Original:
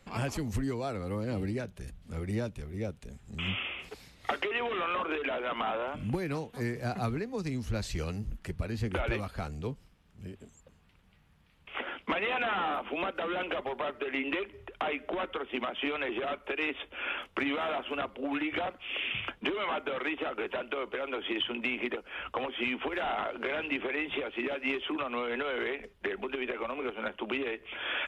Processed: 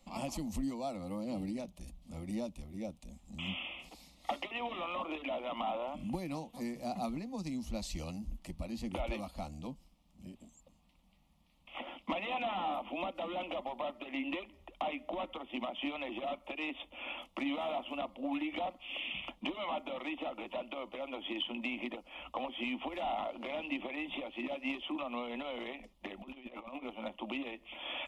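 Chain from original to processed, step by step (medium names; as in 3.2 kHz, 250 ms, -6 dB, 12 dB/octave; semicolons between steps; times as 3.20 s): 26.21–26.83 s: compressor with a negative ratio -40 dBFS, ratio -0.5; static phaser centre 420 Hz, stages 6; trim -1.5 dB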